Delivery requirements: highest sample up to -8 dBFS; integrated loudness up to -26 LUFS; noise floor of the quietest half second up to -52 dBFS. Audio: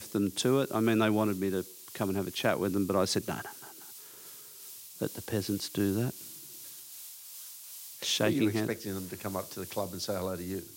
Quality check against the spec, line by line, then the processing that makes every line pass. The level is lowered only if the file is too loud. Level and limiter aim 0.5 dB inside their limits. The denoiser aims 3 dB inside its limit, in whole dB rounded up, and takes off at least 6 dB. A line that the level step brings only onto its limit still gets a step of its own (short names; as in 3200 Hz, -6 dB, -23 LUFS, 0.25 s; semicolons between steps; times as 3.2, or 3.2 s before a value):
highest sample -12.0 dBFS: OK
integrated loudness -31.5 LUFS: OK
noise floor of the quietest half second -49 dBFS: fail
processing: denoiser 6 dB, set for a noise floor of -49 dBFS